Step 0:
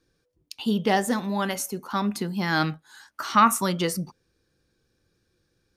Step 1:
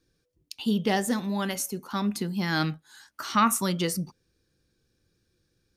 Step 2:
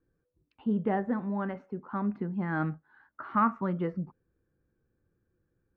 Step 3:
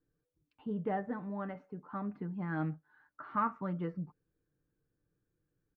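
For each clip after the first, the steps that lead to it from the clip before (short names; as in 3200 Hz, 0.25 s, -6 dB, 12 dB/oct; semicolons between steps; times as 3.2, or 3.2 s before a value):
bell 920 Hz -5.5 dB 2.3 oct
LPF 1600 Hz 24 dB/oct; gain -3 dB
comb 6.7 ms, depth 43%; gain -6.5 dB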